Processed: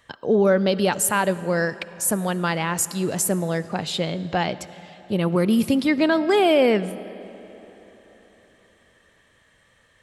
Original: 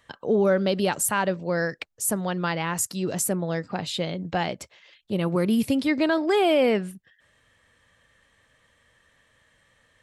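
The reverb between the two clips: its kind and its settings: algorithmic reverb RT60 3.9 s, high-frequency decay 0.75×, pre-delay 30 ms, DRR 16 dB; trim +3 dB

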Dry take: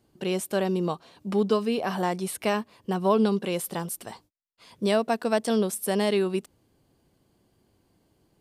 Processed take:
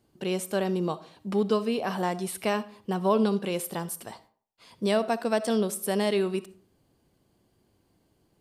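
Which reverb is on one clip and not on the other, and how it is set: algorithmic reverb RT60 0.46 s, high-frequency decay 0.6×, pre-delay 20 ms, DRR 15.5 dB; trim -1.5 dB

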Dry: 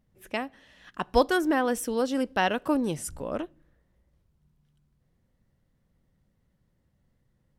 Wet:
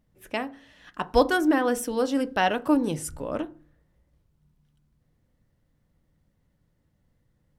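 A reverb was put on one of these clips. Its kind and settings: FDN reverb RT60 0.37 s, low-frequency decay 1.25×, high-frequency decay 0.35×, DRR 11 dB; trim +1 dB

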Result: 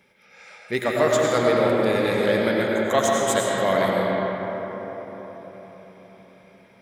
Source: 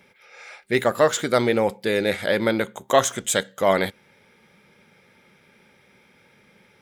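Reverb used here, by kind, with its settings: algorithmic reverb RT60 4.8 s, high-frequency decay 0.4×, pre-delay 60 ms, DRR -3.5 dB; trim -4.5 dB

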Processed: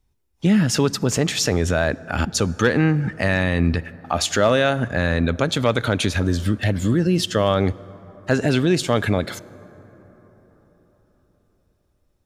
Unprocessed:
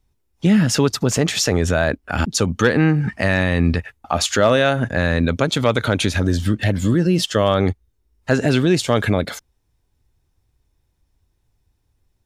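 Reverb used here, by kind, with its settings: plate-style reverb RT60 4.7 s, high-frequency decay 0.35×, DRR 19.5 dB; trim -2 dB

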